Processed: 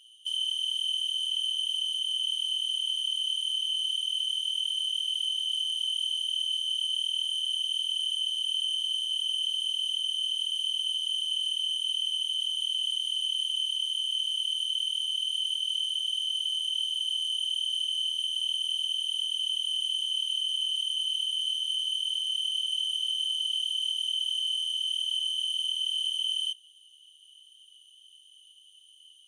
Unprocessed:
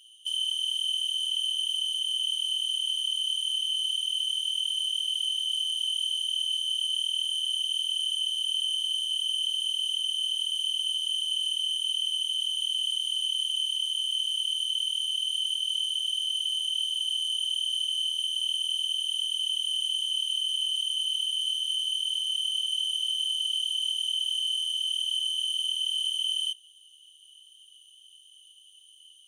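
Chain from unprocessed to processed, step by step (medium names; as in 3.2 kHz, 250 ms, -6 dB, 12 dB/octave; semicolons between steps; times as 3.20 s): treble shelf 7.2 kHz -6.5 dB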